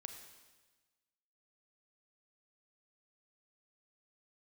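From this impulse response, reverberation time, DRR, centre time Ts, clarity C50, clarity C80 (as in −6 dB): 1.3 s, 5.5 dB, 30 ms, 6.5 dB, 7.5 dB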